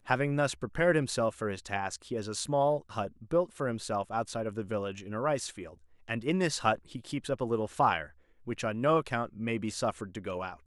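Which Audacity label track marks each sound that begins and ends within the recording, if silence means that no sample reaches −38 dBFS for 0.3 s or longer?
6.080000	8.060000	sound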